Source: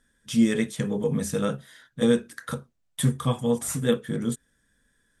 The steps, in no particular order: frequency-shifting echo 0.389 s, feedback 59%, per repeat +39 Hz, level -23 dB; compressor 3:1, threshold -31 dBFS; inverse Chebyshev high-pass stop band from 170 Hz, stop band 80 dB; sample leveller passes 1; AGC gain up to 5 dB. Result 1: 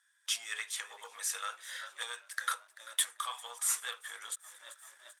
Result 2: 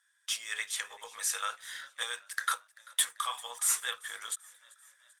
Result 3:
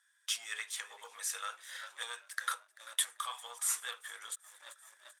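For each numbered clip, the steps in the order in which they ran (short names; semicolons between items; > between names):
frequency-shifting echo > AGC > compressor > sample leveller > inverse Chebyshev high-pass; compressor > inverse Chebyshev high-pass > sample leveller > frequency-shifting echo > AGC; frequency-shifting echo > AGC > sample leveller > compressor > inverse Chebyshev high-pass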